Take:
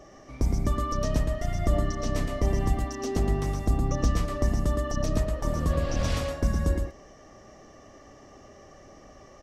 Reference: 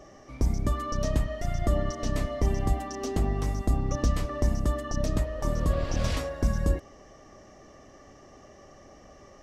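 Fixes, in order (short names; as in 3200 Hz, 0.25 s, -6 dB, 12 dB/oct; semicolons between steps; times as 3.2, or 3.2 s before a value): inverse comb 0.115 s -5.5 dB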